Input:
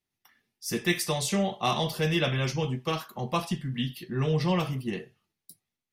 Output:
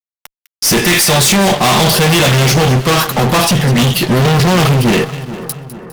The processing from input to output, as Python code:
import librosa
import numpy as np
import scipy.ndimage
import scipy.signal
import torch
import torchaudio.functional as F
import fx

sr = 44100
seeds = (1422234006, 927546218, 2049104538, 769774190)

y = fx.peak_eq(x, sr, hz=88.0, db=8.5, octaves=0.73, at=(3.82, 4.89))
y = fx.fuzz(y, sr, gain_db=43.0, gate_db=-51.0)
y = fx.echo_split(y, sr, split_hz=1700.0, low_ms=433, high_ms=203, feedback_pct=52, wet_db=-14)
y = y * librosa.db_to_amplitude(4.0)